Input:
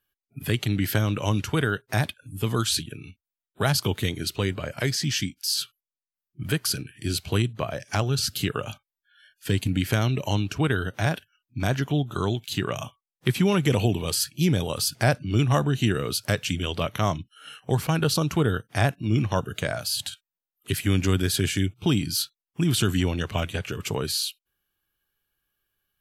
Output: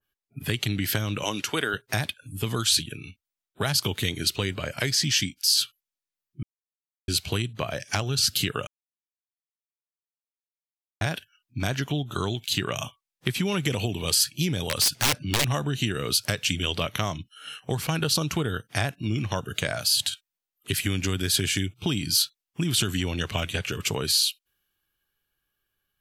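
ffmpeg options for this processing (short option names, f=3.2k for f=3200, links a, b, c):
-filter_complex "[0:a]asettb=1/sr,asplit=3[a][b][c];[a]atrim=end=1.234[d];[b]atrim=start=1.23:end=1.74,asetpts=PTS-STARTPTS,afade=t=in:d=0.004:c=qsin,afade=t=out:st=0.506:d=0.004:c=qsin,highpass=280[e];[c]atrim=start=1.736[f];[d][e]acrossfade=d=0.004:c1=hsin:c2=qsin[g];[g][f]acrossfade=d=0.004:c1=qsin:c2=hsin,asettb=1/sr,asplit=3[h][i][j];[h]atrim=end=14.614[k];[i]atrim=start=14.61:end=15.47,asetpts=PTS-STARTPTS,afade=t=in:d=0.004:c=qsin,afade=t=out:st=0.856:d=0.004:c=qsin,aeval=exprs='(mod(6.68*val(0)+1,2)-1)/6.68':c=same[l];[j]atrim=start=15.466[m];[k][l]acrossfade=d=0.004:c1=hsin:c2=qsin[n];[n][m]acrossfade=d=0.004:c1=qsin:c2=hsin,asplit=5[o][p][q][r][s];[o]atrim=end=6.43,asetpts=PTS-STARTPTS,afade=t=out:st=6.426:d=0.004:c=hsin[t];[p]atrim=start=6.43:end=7.08,asetpts=PTS-STARTPTS,volume=0[u];[q]atrim=start=7.08:end=8.67,asetpts=PTS-STARTPTS,afade=t=in:d=0.004:c=hsin,afade=t=out:st=1.586:d=0.004:c=hsin[v];[r]atrim=start=8.67:end=11.01,asetpts=PTS-STARTPTS,volume=0[w];[s]atrim=start=11.01,asetpts=PTS-STARTPTS,afade=t=in:d=0.004:c=hsin[x];[t][u][v][w][x]concat=n=5:v=0:a=1,highshelf=f=9.7k:g=-4,acompressor=threshold=-23dB:ratio=6,adynamicequalizer=threshold=0.00398:dfrequency=1800:dqfactor=0.7:tfrequency=1800:tqfactor=0.7:attack=5:release=100:ratio=0.375:range=3.5:mode=boostabove:tftype=highshelf"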